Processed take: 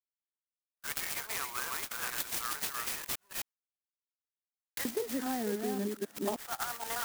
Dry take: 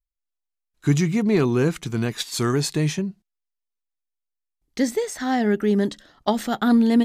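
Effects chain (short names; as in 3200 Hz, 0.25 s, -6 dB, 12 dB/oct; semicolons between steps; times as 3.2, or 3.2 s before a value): reverse delay 0.263 s, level -3 dB; HPF 1000 Hz 24 dB/oct, from 4.85 s 220 Hz, from 6.36 s 880 Hz; gate with hold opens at -40 dBFS; compressor 6:1, threshold -32 dBFS, peak gain reduction 16 dB; clock jitter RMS 0.088 ms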